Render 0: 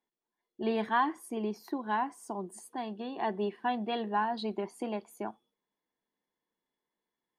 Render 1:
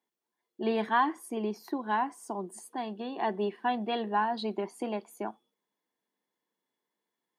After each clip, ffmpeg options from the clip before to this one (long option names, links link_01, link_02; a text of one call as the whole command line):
ffmpeg -i in.wav -af "highpass=160,volume=2dB" out.wav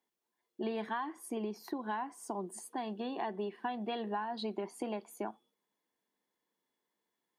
ffmpeg -i in.wav -af "acompressor=threshold=-34dB:ratio=6" out.wav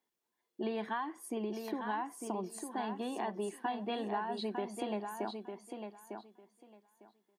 ffmpeg -i in.wav -af "aecho=1:1:902|1804|2706:0.473|0.0804|0.0137" out.wav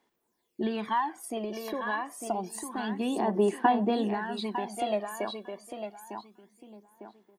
ffmpeg -i in.wav -af "aphaser=in_gain=1:out_gain=1:delay=1.8:decay=0.64:speed=0.28:type=sinusoidal,volume=5dB" out.wav